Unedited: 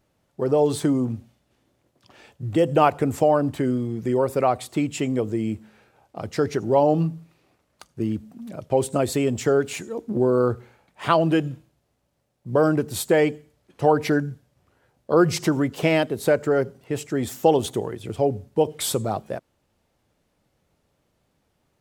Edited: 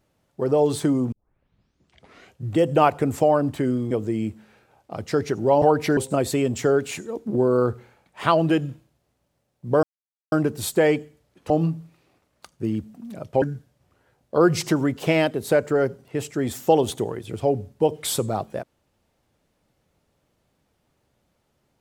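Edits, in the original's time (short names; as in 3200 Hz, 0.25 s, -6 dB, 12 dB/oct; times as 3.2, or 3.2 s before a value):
1.12 tape start 1.32 s
3.91–5.16 cut
6.87–8.79 swap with 13.83–14.18
12.65 insert silence 0.49 s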